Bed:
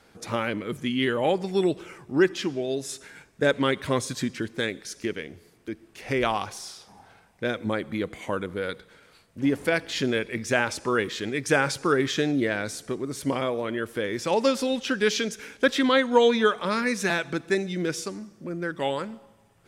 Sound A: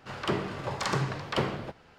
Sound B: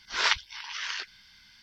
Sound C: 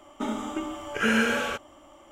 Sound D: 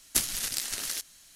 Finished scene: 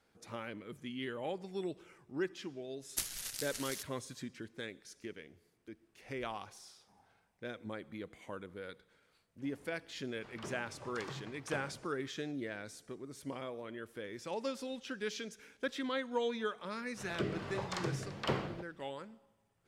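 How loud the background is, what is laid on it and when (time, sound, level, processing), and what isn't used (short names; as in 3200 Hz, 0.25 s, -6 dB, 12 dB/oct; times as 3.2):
bed -16 dB
2.82 add D -10.5 dB + bell 250 Hz -5.5 dB
10.15 add A -17.5 dB
16.91 add A -5.5 dB + rotary speaker horn 1.2 Hz
not used: B, C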